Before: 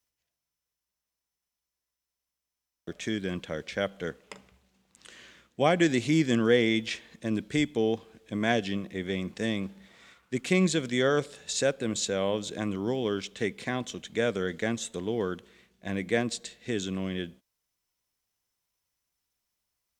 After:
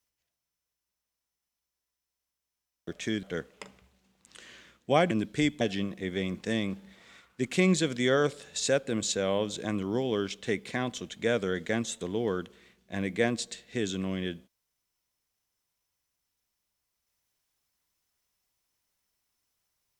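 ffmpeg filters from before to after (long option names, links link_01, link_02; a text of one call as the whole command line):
ffmpeg -i in.wav -filter_complex "[0:a]asplit=4[link_01][link_02][link_03][link_04];[link_01]atrim=end=3.232[link_05];[link_02]atrim=start=3.928:end=5.812[link_06];[link_03]atrim=start=7.268:end=7.772[link_07];[link_04]atrim=start=8.538[link_08];[link_05][link_06]acrossfade=duration=0.004:curve1=hsin:curve2=hsin[link_09];[link_09][link_07]acrossfade=duration=0.004:curve1=hsin:curve2=hsin[link_10];[link_10][link_08]acrossfade=duration=0.004:curve1=hsin:curve2=hsin" out.wav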